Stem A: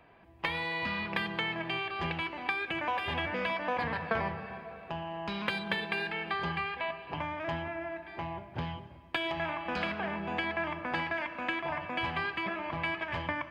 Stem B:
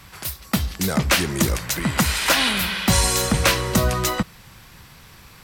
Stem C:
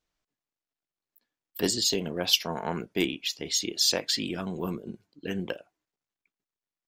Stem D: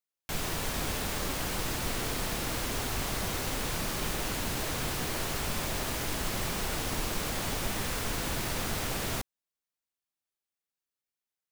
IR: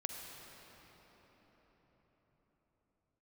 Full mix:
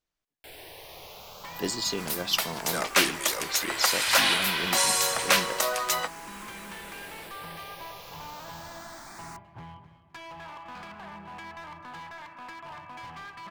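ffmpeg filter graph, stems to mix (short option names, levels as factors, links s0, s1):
-filter_complex "[0:a]equalizer=f=125:t=o:w=1:g=8,equalizer=f=500:t=o:w=1:g=-5,equalizer=f=1000:t=o:w=1:g=11,volume=26.6,asoftclip=hard,volume=0.0376,adelay=1000,volume=0.282,asplit=2[s0][s1];[s1]volume=0.224[s2];[1:a]highpass=f=520:w=0.5412,highpass=f=520:w=1.3066,adelay=1850,volume=0.708[s3];[2:a]volume=0.631[s4];[3:a]bass=f=250:g=-12,treble=f=4000:g=-3,asplit=2[s5][s6];[s6]afreqshift=0.29[s7];[s5][s7]amix=inputs=2:normalize=1,adelay=150,volume=0.447[s8];[s2]aecho=0:1:257|514|771|1028:1|0.3|0.09|0.027[s9];[s0][s3][s4][s8][s9]amix=inputs=5:normalize=0"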